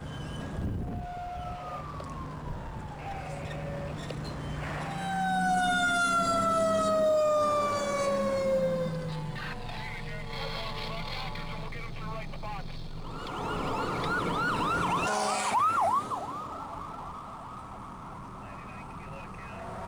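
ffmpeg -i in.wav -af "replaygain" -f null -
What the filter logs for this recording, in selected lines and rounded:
track_gain = +10.9 dB
track_peak = 0.104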